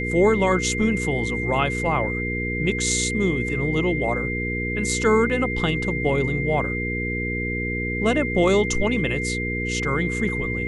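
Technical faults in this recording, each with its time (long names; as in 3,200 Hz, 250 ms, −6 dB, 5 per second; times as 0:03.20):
mains hum 60 Hz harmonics 8 −28 dBFS
whistle 2,100 Hz −27 dBFS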